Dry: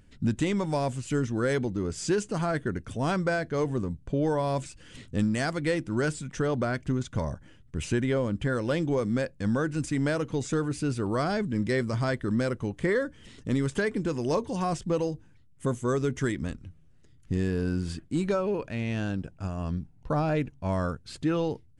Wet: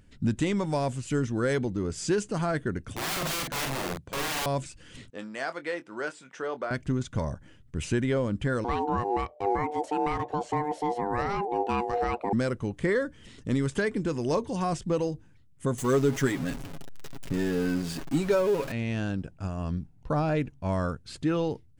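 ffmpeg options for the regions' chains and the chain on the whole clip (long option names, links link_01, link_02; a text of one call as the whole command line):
ffmpeg -i in.wav -filter_complex "[0:a]asettb=1/sr,asplit=3[link_01][link_02][link_03];[link_01]atrim=end=2.934[link_04];[link_02]atrim=start=2.93:end=4.46,asetpts=PTS-STARTPTS,afade=type=in:duration=0.004:curve=qsin,afade=type=out:start_time=1.526:duration=0.004:curve=qsin,highpass=100,aeval=exprs='(mod(23.7*val(0)+1,2)-1)/23.7':channel_layout=same,asplit=2[link_05][link_06];[link_06]adelay=45,volume=-3dB[link_07];[link_05][link_07]amix=inputs=2:normalize=0,atrim=end_sample=67473[link_08];[link_03]atrim=start=4.456[link_09];[link_04][link_08]acrossfade=duration=0.004:curve1=hsin:curve2=qsin[link_10];[link_10][link_09]acrossfade=duration=0.004:curve1=qsin:curve2=hsin,asettb=1/sr,asplit=3[link_11][link_12][link_13];[link_11]atrim=end=5.104[link_14];[link_12]atrim=start=5.1:end=6.71,asetpts=PTS-STARTPTS,afade=type=in:duration=0.004:curve=qsin,afade=type=out:start_time=1.606:duration=0.004:curve=qsin,highpass=560,aemphasis=mode=reproduction:type=75kf,asplit=2[link_15][link_16];[link_16]adelay=23,volume=-11dB[link_17];[link_15][link_17]amix=inputs=2:normalize=0,atrim=end_sample=71001[link_18];[link_13]atrim=start=6.706[link_19];[link_14][link_18]acrossfade=duration=0.004:curve1=hsin:curve2=qsin[link_20];[link_20][link_19]acrossfade=duration=0.004:curve1=qsin:curve2=hsin,asettb=1/sr,asplit=3[link_21][link_22][link_23];[link_21]atrim=end=8.644[link_24];[link_22]atrim=start=8.64:end=12.33,asetpts=PTS-STARTPTS,afade=type=in:duration=0.004:curve=qsin,afade=type=out:start_time=3.686:duration=0.004:curve=qsin,bass=frequency=250:gain=4,treble=frequency=4000:gain=-9,aeval=exprs='val(0)*sin(2*PI*600*n/s)':channel_layout=same[link_25];[link_23]atrim=start=12.326[link_26];[link_24][link_25]acrossfade=duration=0.004:curve1=hsin:curve2=qsin[link_27];[link_27][link_26]acrossfade=duration=0.004:curve1=qsin:curve2=hsin,asettb=1/sr,asplit=3[link_28][link_29][link_30];[link_28]atrim=end=15.784[link_31];[link_29]atrim=start=15.78:end=18.72,asetpts=PTS-STARTPTS,afade=type=in:duration=0.004:curve=qsin,afade=type=out:start_time=2.936:duration=0.004:curve=qsin,aeval=exprs='val(0)+0.5*0.0211*sgn(val(0))':channel_layout=same,equalizer=frequency=86:width_type=o:width=0.76:gain=-12.5,aecho=1:1:7.3:0.53,atrim=end_sample=129654[link_32];[link_30]atrim=start=18.716[link_33];[link_31][link_32]acrossfade=duration=0.004:curve1=hsin:curve2=qsin[link_34];[link_34][link_33]acrossfade=duration=0.004:curve1=qsin:curve2=hsin" out.wav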